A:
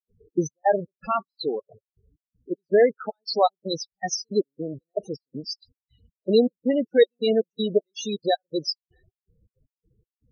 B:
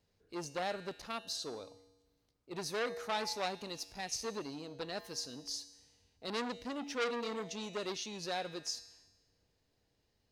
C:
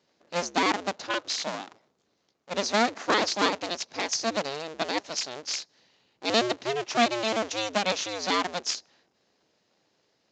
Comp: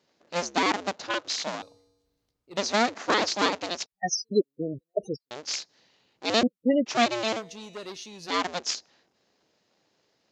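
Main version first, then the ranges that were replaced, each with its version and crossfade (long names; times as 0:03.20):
C
0:01.62–0:02.57: punch in from B
0:03.86–0:05.31: punch in from A
0:06.43–0:06.86: punch in from A
0:07.38–0:08.31: punch in from B, crossfade 0.10 s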